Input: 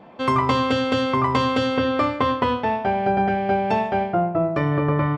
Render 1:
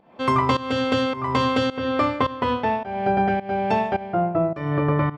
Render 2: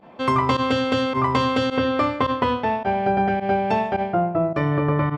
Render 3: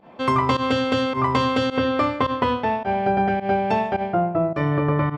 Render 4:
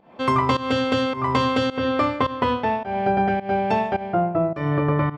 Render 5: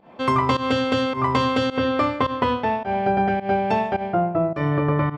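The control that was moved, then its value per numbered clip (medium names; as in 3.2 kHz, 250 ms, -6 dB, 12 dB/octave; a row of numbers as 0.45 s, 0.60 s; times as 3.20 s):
volume shaper, release: 360 ms, 60 ms, 98 ms, 234 ms, 146 ms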